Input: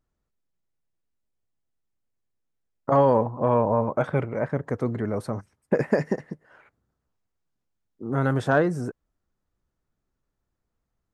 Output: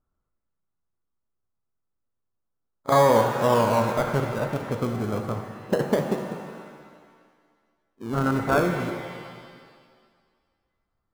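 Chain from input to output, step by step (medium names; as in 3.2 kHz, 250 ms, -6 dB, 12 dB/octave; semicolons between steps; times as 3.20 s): resonant high shelf 1.8 kHz -12 dB, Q 3; pre-echo 32 ms -23 dB; in parallel at -8 dB: decimation with a swept rate 32×, swing 100% 0.25 Hz; on the sum: pitch-shifted reverb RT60 1.8 s, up +7 st, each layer -8 dB, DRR 5 dB; trim -4 dB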